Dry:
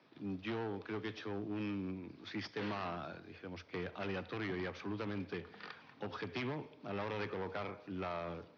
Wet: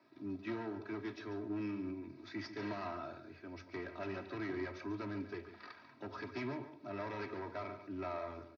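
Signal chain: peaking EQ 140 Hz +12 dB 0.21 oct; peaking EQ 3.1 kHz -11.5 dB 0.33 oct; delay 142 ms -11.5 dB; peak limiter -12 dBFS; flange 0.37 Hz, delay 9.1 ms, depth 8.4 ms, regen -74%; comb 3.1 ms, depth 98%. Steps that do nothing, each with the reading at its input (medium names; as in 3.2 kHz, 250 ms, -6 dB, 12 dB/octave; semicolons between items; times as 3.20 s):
peak limiter -12 dBFS: peak at its input -27.5 dBFS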